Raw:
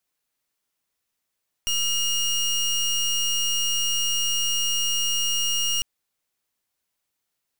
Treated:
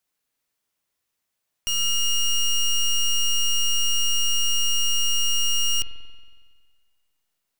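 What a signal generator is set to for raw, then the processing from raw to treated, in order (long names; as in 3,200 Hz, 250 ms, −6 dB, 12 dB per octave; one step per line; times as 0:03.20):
pulse wave 2,850 Hz, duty 25% −23.5 dBFS 4.15 s
spring reverb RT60 1.7 s, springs 46 ms, chirp 55 ms, DRR 7.5 dB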